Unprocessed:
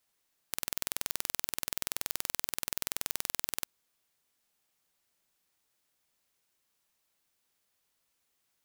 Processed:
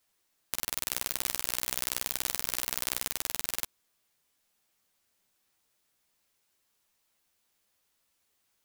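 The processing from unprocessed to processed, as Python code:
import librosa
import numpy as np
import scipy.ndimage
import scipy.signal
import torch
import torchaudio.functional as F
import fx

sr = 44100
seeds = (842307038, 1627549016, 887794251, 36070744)

y = fx.chorus_voices(x, sr, voices=6, hz=0.76, base_ms=12, depth_ms=3.1, mix_pct=30)
y = fx.env_flatten(y, sr, amount_pct=100, at=(0.87, 3.07), fade=0.02)
y = y * 10.0 ** (5.0 / 20.0)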